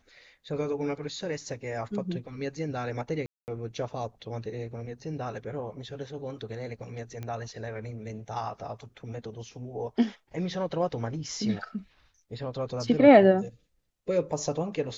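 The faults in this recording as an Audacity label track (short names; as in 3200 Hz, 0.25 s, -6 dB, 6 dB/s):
3.260000	3.480000	gap 0.219 s
7.230000	7.230000	pop -24 dBFS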